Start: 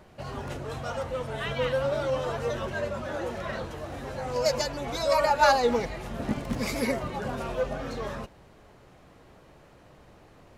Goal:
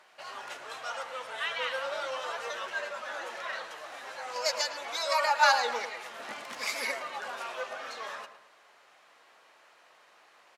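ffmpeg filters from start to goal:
ffmpeg -i in.wav -filter_complex "[0:a]highpass=1100,highshelf=frequency=12000:gain=-11,asplit=2[link_01][link_02];[link_02]adelay=109,lowpass=frequency=2500:poles=1,volume=-10.5dB,asplit=2[link_03][link_04];[link_04]adelay=109,lowpass=frequency=2500:poles=1,volume=0.46,asplit=2[link_05][link_06];[link_06]adelay=109,lowpass=frequency=2500:poles=1,volume=0.46,asplit=2[link_07][link_08];[link_08]adelay=109,lowpass=frequency=2500:poles=1,volume=0.46,asplit=2[link_09][link_10];[link_10]adelay=109,lowpass=frequency=2500:poles=1,volume=0.46[link_11];[link_03][link_05][link_07][link_09][link_11]amix=inputs=5:normalize=0[link_12];[link_01][link_12]amix=inputs=2:normalize=0,volume=2.5dB" out.wav

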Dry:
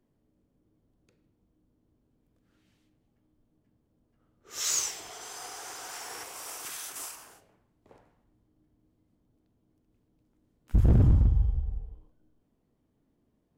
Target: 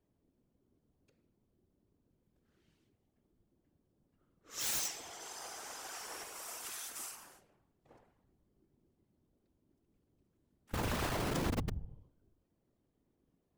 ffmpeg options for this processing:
ffmpeg -i in.wav -af "aeval=exprs='(mod(16.8*val(0)+1,2)-1)/16.8':channel_layout=same,afftfilt=real='hypot(re,im)*cos(2*PI*random(0))':imag='hypot(re,im)*sin(2*PI*random(1))':win_size=512:overlap=0.75,volume=1dB" out.wav

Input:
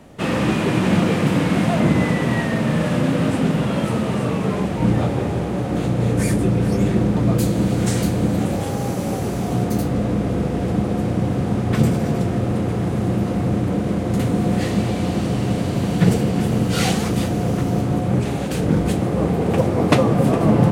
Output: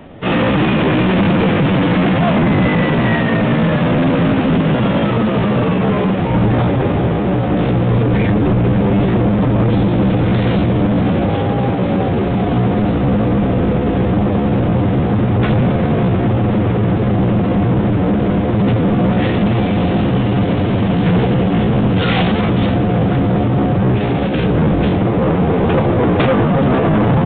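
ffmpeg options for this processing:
ffmpeg -i in.wav -af "bandreject=frequency=72.66:width_type=h:width=4,bandreject=frequency=145.32:width_type=h:width=4,bandreject=frequency=217.98:width_type=h:width=4,aresample=16000,volume=18.5dB,asoftclip=hard,volume=-18.5dB,aresample=44100,aresample=8000,aresample=44100,atempo=0.76,volume=8.5dB" out.wav

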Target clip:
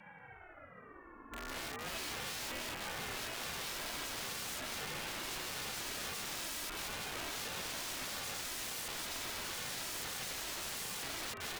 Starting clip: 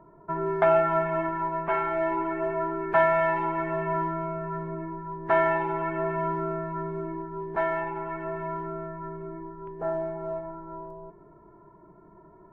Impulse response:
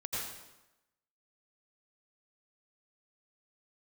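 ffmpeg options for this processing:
-filter_complex "[0:a]areverse,lowshelf=frequency=76:gain=-10,asplit=2[link_01][link_02];[link_02]aecho=0:1:201|282|836:0.316|0.141|0.168[link_03];[link_01][link_03]amix=inputs=2:normalize=0,acompressor=threshold=-32dB:ratio=3,aeval=exprs='(mod(63.1*val(0)+1,2)-1)/63.1':channel_layout=same,afreqshift=17,asetrate=47628,aresample=44100,aecho=1:1:3.1:0.41,aeval=exprs='val(0)*sin(2*PI*960*n/s+960*0.3/0.38*sin(2*PI*0.38*n/s))':channel_layout=same,volume=1.5dB"

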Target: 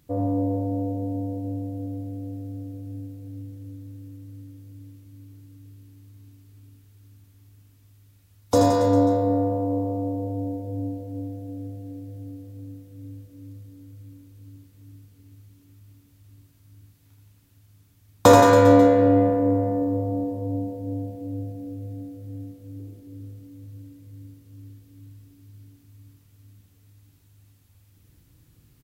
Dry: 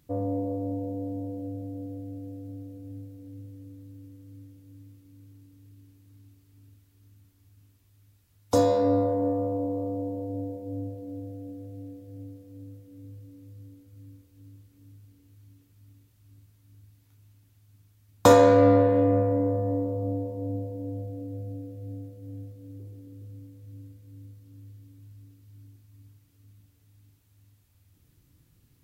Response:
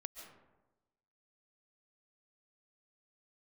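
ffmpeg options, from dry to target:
-af "aecho=1:1:80|172|277.8|399.5|539.4:0.631|0.398|0.251|0.158|0.1,volume=3dB"

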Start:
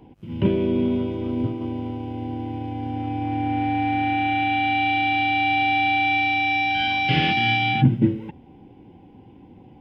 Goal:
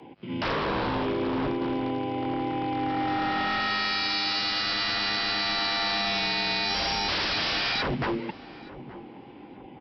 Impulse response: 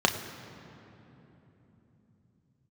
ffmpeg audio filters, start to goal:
-filter_complex "[0:a]highpass=frequency=460:poles=1,acontrast=74,equalizer=frequency=2100:width_type=o:width=0.42:gain=3.5,aresample=11025,aeval=exprs='0.075*(abs(mod(val(0)/0.075+3,4)-2)-1)':channel_layout=same,aresample=44100,afreqshift=15,asplit=2[link_01][link_02];[link_02]adelay=873,lowpass=frequency=1200:poles=1,volume=-15.5dB,asplit=2[link_03][link_04];[link_04]adelay=873,lowpass=frequency=1200:poles=1,volume=0.41,asplit=2[link_05][link_06];[link_06]adelay=873,lowpass=frequency=1200:poles=1,volume=0.41,asplit=2[link_07][link_08];[link_08]adelay=873,lowpass=frequency=1200:poles=1,volume=0.41[link_09];[link_03][link_05][link_07][link_09]amix=inputs=4:normalize=0[link_10];[link_01][link_10]amix=inputs=2:normalize=0"

